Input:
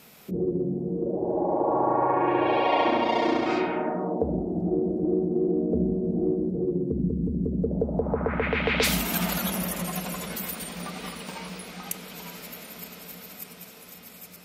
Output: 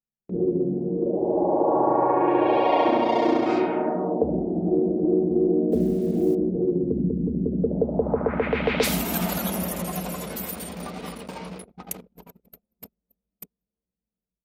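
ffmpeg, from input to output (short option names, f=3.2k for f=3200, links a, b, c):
-filter_complex "[0:a]acrossover=split=180|930[a][b][c];[a]aecho=1:1:1073|2146|3219|4292|5365|6438:0.376|0.199|0.106|0.056|0.0297|0.0157[d];[b]dynaudnorm=f=110:g=5:m=8dB[e];[d][e][c]amix=inputs=3:normalize=0,asettb=1/sr,asplit=3[f][g][h];[f]atrim=end=5.724[i];[g]atrim=start=5.72:end=6.35,asetpts=PTS-STARTPTS,afade=t=in:d=0.004:c=qsin,afade=t=out:st=0.626:d=0.004:c=qsin,acrusher=bits=6:mix=0:aa=0.5[j];[h]atrim=start=6.346[k];[i][j]acrossfade=d=0.004:c1=hsin:c2=qsin[l];[l][k]acrossfade=d=0.004:c1=qsin:c2=hsin,highshelf=f=6.6k:g=4.5,agate=range=-19dB:threshold=-34dB:ratio=16:detection=peak,anlmdn=2.51,volume=-3.5dB"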